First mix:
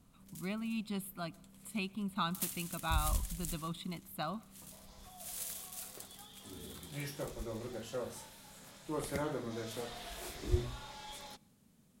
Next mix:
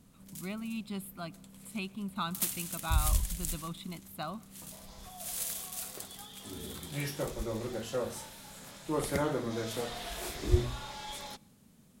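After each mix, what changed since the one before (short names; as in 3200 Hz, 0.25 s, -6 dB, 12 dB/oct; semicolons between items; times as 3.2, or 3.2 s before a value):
background +6.0 dB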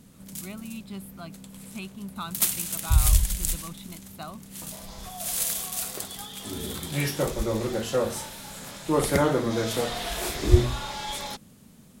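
background +9.5 dB; reverb: off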